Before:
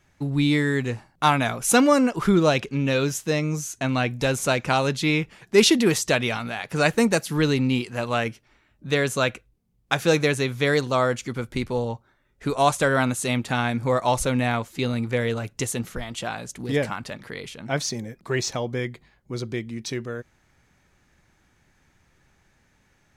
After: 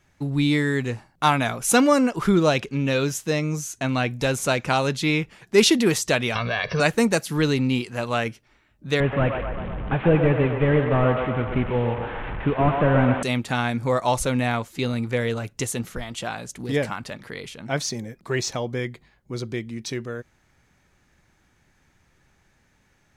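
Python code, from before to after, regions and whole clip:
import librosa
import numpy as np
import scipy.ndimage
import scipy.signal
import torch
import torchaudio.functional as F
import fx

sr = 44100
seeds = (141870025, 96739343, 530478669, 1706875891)

y = fx.chain(x, sr, fx.brickwall_lowpass(high_hz=6100.0),
    fx.comb(ms=1.8, depth=0.88),
    fx.env_flatten(amount_pct=50), at=(6.35, 6.8))
y = fx.chain(y, sr, fx.delta_mod(bps=16000, step_db=-29.5),
    fx.low_shelf(hz=240.0, db=7.0),
    fx.echo_banded(ms=126, feedback_pct=71, hz=910.0, wet_db=-3.5), at=(9.0, 13.23))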